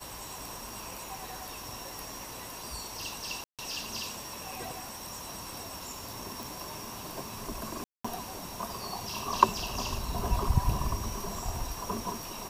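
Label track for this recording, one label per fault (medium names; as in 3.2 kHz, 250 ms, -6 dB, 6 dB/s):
0.690000	0.690000	pop
3.440000	3.590000	dropout 147 ms
6.430000	6.430000	pop
7.840000	8.040000	dropout 205 ms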